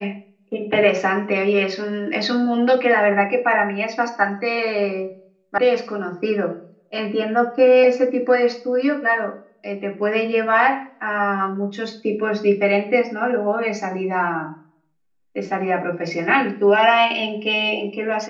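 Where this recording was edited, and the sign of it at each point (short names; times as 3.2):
5.58 sound cut off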